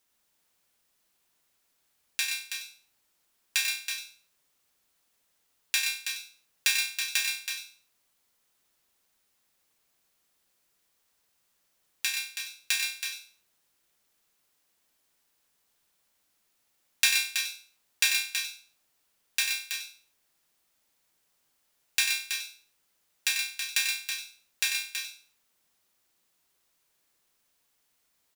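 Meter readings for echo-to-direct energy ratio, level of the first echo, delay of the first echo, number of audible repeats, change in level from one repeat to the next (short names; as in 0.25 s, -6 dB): -2.5 dB, -7.5 dB, 93 ms, 4, no steady repeat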